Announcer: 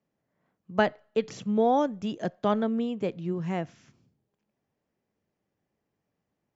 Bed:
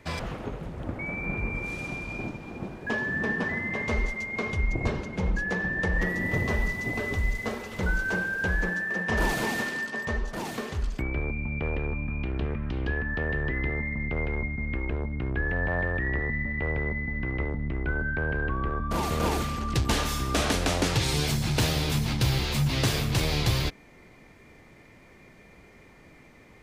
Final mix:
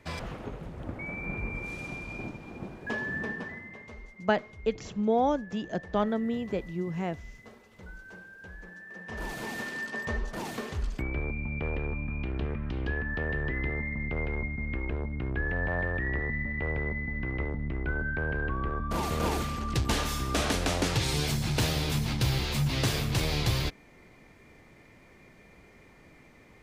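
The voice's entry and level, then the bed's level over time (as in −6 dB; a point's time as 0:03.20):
3.50 s, −2.0 dB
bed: 0:03.15 −4 dB
0:03.96 −19.5 dB
0:08.62 −19.5 dB
0:09.91 −2.5 dB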